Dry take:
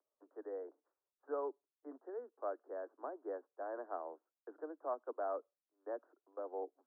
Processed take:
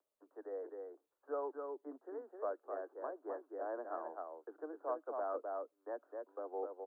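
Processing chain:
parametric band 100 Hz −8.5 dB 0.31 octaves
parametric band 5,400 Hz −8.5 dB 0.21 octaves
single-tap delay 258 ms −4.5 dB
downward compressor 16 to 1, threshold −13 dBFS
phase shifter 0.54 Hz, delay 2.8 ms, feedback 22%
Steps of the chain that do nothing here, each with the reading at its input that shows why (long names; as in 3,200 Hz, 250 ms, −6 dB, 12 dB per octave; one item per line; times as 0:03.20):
parametric band 100 Hz: nothing at its input below 230 Hz
parametric band 5,400 Hz: nothing at its input above 1,700 Hz
downward compressor, threshold −13 dBFS: peak of its input −26.5 dBFS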